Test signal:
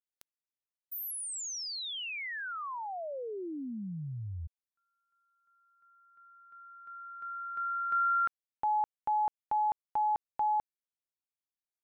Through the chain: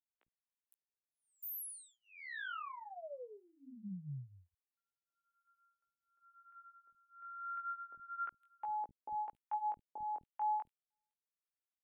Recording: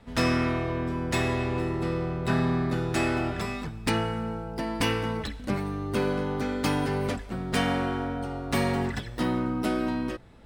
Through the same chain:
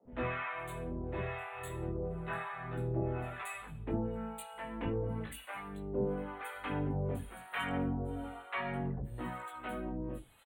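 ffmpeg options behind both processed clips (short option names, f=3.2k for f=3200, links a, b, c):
-filter_complex "[0:a]flanger=delay=15.5:depth=7.2:speed=0.34,acrossover=split=270|3900[a][b][c];[a]adelay=50[d];[c]adelay=510[e];[d][b][e]amix=inputs=3:normalize=0,acrossover=split=710[f][g];[f]aeval=exprs='val(0)*(1-1/2+1/2*cos(2*PI*1*n/s))':c=same[h];[g]aeval=exprs='val(0)*(1-1/2-1/2*cos(2*PI*1*n/s))':c=same[i];[h][i]amix=inputs=2:normalize=0,asuperstop=centerf=5300:order=4:qfactor=0.95,volume=-1dB"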